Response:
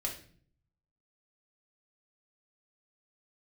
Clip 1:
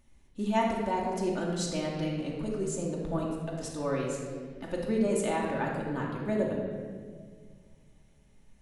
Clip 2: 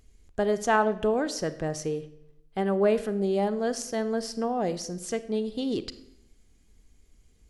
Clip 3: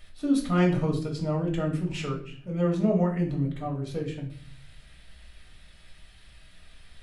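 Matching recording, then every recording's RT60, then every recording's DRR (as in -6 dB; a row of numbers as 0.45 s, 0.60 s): 3; 1.8 s, 0.85 s, 0.50 s; -3.0 dB, 13.0 dB, -1.0 dB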